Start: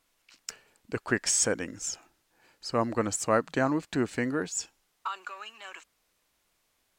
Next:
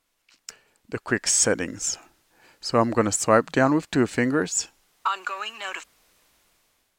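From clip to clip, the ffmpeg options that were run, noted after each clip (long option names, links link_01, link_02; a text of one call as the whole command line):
ffmpeg -i in.wav -af "dynaudnorm=framelen=520:gausssize=5:maxgain=15dB,volume=-1dB" out.wav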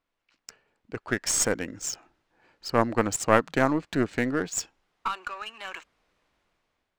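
ffmpeg -i in.wav -af "aeval=exprs='0.841*(cos(1*acos(clip(val(0)/0.841,-1,1)))-cos(1*PI/2))+0.422*(cos(2*acos(clip(val(0)/0.841,-1,1)))-cos(2*PI/2))':channel_layout=same,highshelf=frequency=11000:gain=10,adynamicsmooth=sensitivity=4:basefreq=3000,volume=-5dB" out.wav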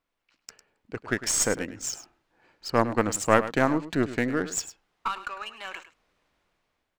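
ffmpeg -i in.wav -af "aecho=1:1:103:0.2" out.wav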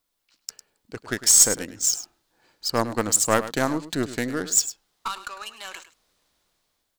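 ffmpeg -i in.wav -af "aexciter=amount=3.3:drive=6.2:freq=3500,volume=-1dB" out.wav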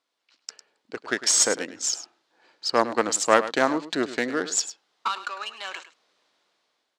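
ffmpeg -i in.wav -af "highpass=320,lowpass=4700,volume=3.5dB" out.wav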